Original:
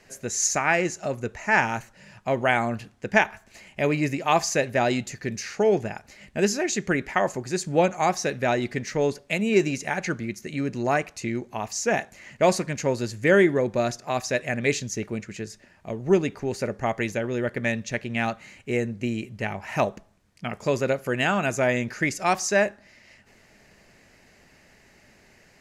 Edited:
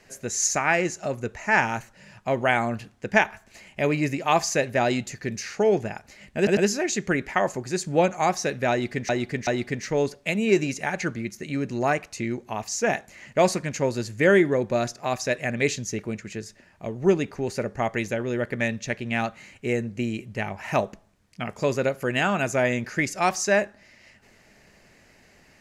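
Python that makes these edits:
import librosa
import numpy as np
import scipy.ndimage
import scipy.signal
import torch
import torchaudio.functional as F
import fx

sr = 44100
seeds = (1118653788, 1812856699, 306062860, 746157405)

y = fx.edit(x, sr, fx.stutter(start_s=6.37, slice_s=0.1, count=3),
    fx.repeat(start_s=8.51, length_s=0.38, count=3), tone=tone)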